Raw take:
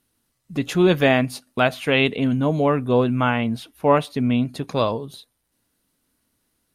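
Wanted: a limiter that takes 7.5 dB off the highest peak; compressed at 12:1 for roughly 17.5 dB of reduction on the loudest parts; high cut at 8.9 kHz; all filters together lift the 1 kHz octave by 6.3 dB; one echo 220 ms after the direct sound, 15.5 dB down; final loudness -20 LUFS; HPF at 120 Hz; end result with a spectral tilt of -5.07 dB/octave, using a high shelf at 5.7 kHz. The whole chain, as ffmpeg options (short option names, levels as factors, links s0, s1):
-af "highpass=120,lowpass=8900,equalizer=f=1000:t=o:g=8,highshelf=f=5700:g=-4.5,acompressor=threshold=0.0631:ratio=12,alimiter=limit=0.106:level=0:latency=1,aecho=1:1:220:0.168,volume=3.98"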